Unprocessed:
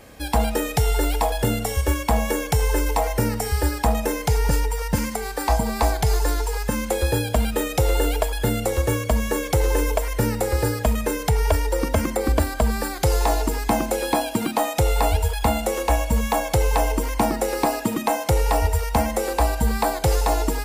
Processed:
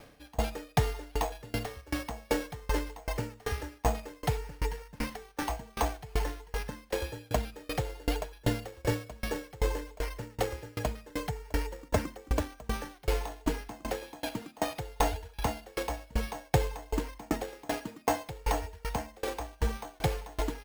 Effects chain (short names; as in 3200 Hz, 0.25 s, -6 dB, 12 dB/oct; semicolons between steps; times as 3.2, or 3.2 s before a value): comb 6.8 ms, depth 36%; careless resampling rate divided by 6×, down none, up hold; dB-ramp tremolo decaying 2.6 Hz, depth 30 dB; gain -3.5 dB